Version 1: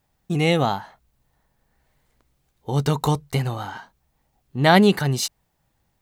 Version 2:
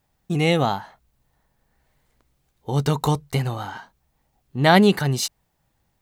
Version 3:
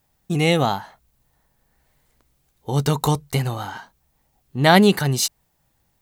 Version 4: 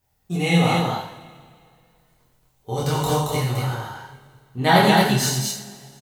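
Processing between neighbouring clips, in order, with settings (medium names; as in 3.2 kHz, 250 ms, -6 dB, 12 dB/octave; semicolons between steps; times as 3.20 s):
no audible change
treble shelf 6.1 kHz +6.5 dB; trim +1 dB
chorus voices 4, 0.44 Hz, delay 24 ms, depth 1.2 ms; on a send: loudspeakers at several distances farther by 30 m -6 dB, 77 m -3 dB; on the sum: two-slope reverb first 0.46 s, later 2.2 s, from -18 dB, DRR -2.5 dB; trim -3 dB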